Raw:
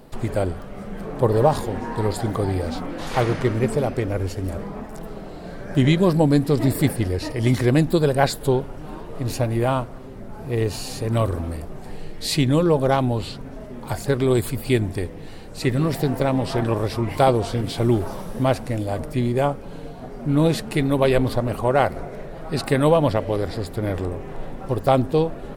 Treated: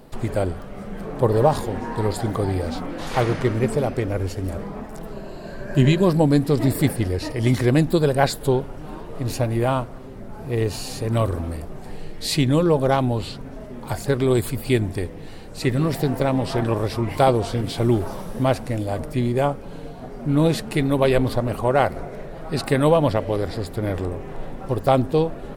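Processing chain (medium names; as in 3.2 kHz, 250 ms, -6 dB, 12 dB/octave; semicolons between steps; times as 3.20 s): 5.12–6.02 s: rippled EQ curve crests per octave 1.4, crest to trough 8 dB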